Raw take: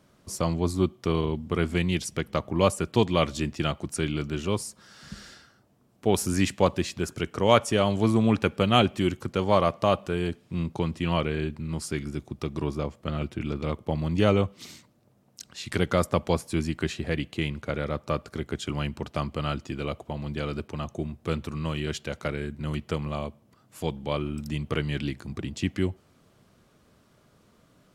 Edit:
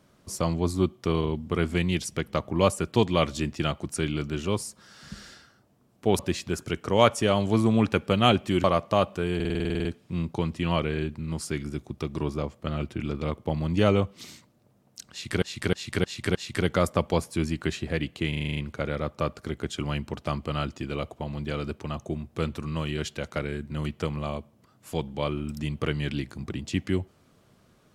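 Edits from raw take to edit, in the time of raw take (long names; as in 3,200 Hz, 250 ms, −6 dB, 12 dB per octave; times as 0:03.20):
0:06.19–0:06.69: remove
0:09.14–0:09.55: remove
0:10.26: stutter 0.05 s, 11 plays
0:15.52–0:15.83: repeat, 5 plays
0:17.46: stutter 0.04 s, 8 plays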